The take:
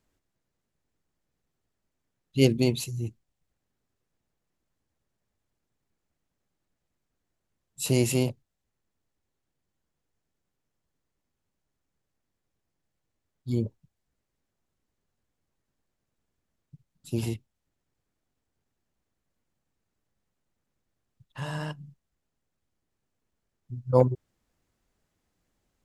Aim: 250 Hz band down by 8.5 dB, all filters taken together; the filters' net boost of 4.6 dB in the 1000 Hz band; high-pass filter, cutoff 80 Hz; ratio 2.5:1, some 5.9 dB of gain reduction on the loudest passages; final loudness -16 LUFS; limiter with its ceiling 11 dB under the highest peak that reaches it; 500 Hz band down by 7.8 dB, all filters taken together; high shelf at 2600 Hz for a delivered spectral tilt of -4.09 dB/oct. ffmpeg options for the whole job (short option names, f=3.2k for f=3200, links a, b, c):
-af "highpass=80,equalizer=f=250:t=o:g=-8.5,equalizer=f=500:t=o:g=-8.5,equalizer=f=1k:t=o:g=7,highshelf=f=2.6k:g=8.5,acompressor=threshold=-26dB:ratio=2.5,volume=21.5dB,alimiter=limit=-2.5dB:level=0:latency=1"